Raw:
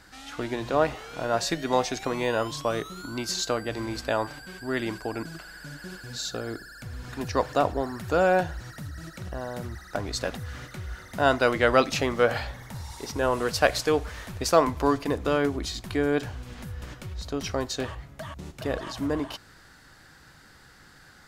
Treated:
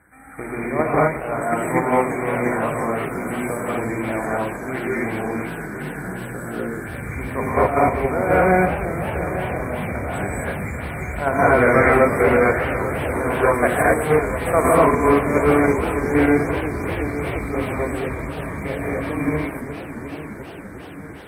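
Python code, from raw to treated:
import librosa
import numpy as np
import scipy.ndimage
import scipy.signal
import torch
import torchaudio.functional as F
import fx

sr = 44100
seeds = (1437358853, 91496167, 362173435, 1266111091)

p1 = fx.rattle_buzz(x, sr, strikes_db=-33.0, level_db=-20.0)
p2 = scipy.signal.sosfilt(scipy.signal.butter(2, 59.0, 'highpass', fs=sr, output='sos'), p1)
p3 = fx.peak_eq(p2, sr, hz=110.0, db=3.0, octaves=2.3)
p4 = fx.hum_notches(p3, sr, base_hz=60, count=4)
p5 = fx.rev_gated(p4, sr, seeds[0], gate_ms=280, shape='rising', drr_db=-7.5)
p6 = fx.level_steps(p5, sr, step_db=17)
p7 = p5 + (p6 * 10.0 ** (-1.0 / 20.0))
p8 = fx.brickwall_bandstop(p7, sr, low_hz=2400.0, high_hz=7800.0)
p9 = p8 + fx.echo_feedback(p8, sr, ms=849, feedback_pct=53, wet_db=-13.0, dry=0)
p10 = fx.echo_warbled(p9, sr, ms=347, feedback_pct=78, rate_hz=2.8, cents=168, wet_db=-12.5)
y = p10 * 10.0 ** (-4.5 / 20.0)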